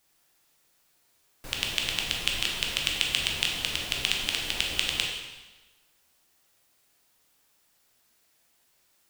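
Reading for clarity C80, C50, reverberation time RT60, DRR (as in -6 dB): 4.5 dB, 2.5 dB, 1.2 s, -1.0 dB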